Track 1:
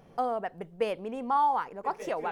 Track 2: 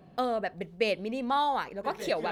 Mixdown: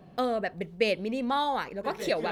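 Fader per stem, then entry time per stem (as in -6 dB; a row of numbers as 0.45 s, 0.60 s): -10.0 dB, +2.0 dB; 0.00 s, 0.00 s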